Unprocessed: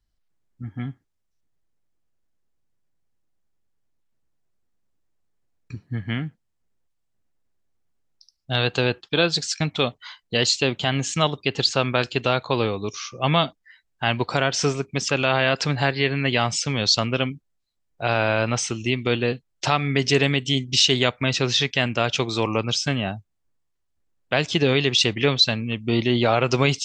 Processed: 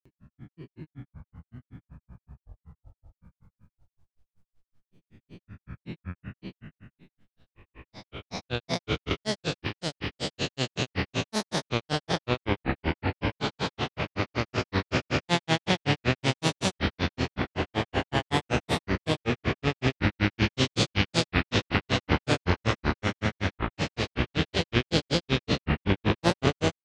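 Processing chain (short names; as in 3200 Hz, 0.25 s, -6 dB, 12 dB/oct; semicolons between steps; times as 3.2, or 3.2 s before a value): time blur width 0.932 s; echoes that change speed 0.397 s, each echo -6 st, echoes 2; grains 0.114 s, grains 5.3/s, pitch spread up and down by 7 st; gain +4.5 dB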